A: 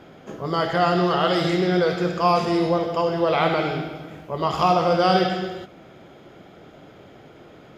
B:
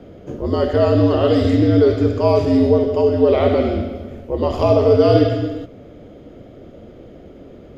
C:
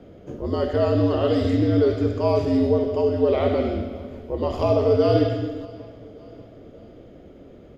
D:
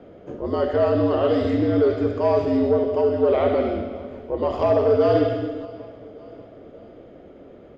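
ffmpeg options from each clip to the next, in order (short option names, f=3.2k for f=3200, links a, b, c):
-af "afreqshift=-72,lowshelf=f=730:t=q:w=1.5:g=9,volume=-3dB"
-af "aecho=1:1:585|1170|1755:0.0841|0.0387|0.0178,volume=-5.5dB"
-filter_complex "[0:a]asplit=2[a][b];[b]highpass=f=720:p=1,volume=12dB,asoftclip=type=tanh:threshold=-6.5dB[c];[a][c]amix=inputs=2:normalize=0,lowpass=f=1.2k:p=1,volume=-6dB"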